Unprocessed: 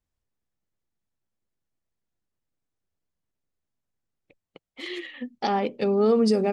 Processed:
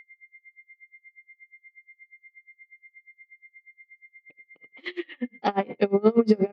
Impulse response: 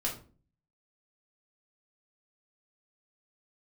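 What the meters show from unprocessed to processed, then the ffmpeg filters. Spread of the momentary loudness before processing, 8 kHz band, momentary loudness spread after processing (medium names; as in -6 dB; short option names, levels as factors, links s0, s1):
17 LU, under -10 dB, 15 LU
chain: -filter_complex "[0:a]highpass=140,lowpass=3000,aeval=exprs='val(0)+0.00316*sin(2*PI*2100*n/s)':c=same,asplit=3[s0][s1][s2];[s1]adelay=81,afreqshift=-37,volume=0.0891[s3];[s2]adelay=162,afreqshift=-74,volume=0.0285[s4];[s0][s3][s4]amix=inputs=3:normalize=0,asplit=2[s5][s6];[1:a]atrim=start_sample=2205[s7];[s6][s7]afir=irnorm=-1:irlink=0,volume=0.106[s8];[s5][s8]amix=inputs=2:normalize=0,aeval=exprs='val(0)*pow(10,-30*(0.5-0.5*cos(2*PI*8.4*n/s))/20)':c=same,volume=2"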